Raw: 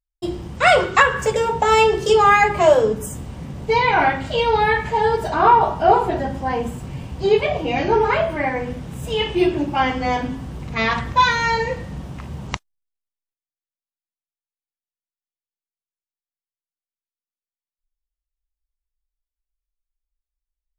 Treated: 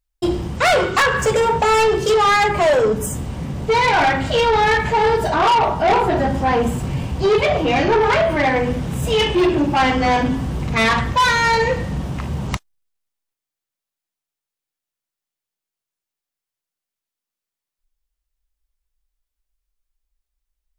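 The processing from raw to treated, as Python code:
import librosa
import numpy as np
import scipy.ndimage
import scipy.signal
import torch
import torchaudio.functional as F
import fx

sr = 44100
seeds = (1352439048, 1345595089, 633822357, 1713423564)

p1 = fx.rider(x, sr, range_db=4, speed_s=0.5)
p2 = x + F.gain(torch.from_numpy(p1), 1.0).numpy()
y = 10.0 ** (-11.5 / 20.0) * np.tanh(p2 / 10.0 ** (-11.5 / 20.0))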